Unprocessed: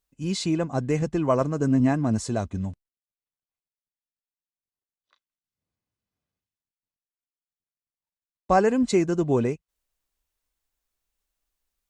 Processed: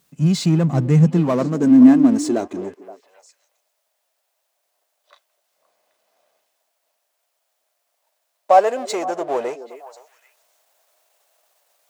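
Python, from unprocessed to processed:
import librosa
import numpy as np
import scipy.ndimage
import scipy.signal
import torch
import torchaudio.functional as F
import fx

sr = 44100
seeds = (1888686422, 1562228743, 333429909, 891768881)

y = fx.power_curve(x, sr, exponent=0.7)
y = fx.echo_stepped(y, sr, ms=260, hz=330.0, octaves=1.4, feedback_pct=70, wet_db=-11)
y = fx.filter_sweep_highpass(y, sr, from_hz=150.0, to_hz=630.0, start_s=0.89, end_s=3.69, q=4.8)
y = y * librosa.db_to_amplitude(-2.5)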